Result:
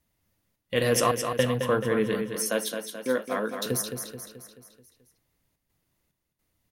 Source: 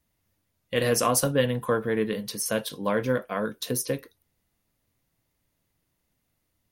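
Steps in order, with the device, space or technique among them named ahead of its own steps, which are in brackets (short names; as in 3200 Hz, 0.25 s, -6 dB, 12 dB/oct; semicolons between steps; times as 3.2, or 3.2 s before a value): trance gate with a delay (step gate "xxxx.xxx..xx" 108 bpm -60 dB; feedback echo 0.216 s, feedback 52%, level -7 dB); 2.36–3.66 HPF 220 Hz 24 dB/oct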